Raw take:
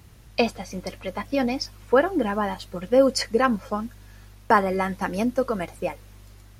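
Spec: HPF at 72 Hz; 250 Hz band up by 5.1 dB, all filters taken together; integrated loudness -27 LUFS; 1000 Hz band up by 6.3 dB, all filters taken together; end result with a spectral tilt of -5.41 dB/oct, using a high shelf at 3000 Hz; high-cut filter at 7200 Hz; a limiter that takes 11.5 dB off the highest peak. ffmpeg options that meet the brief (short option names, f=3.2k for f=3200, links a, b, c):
-af "highpass=72,lowpass=7.2k,equalizer=f=250:t=o:g=5.5,equalizer=f=1k:t=o:g=8,highshelf=f=3k:g=-7,volume=-3dB,alimiter=limit=-14.5dB:level=0:latency=1"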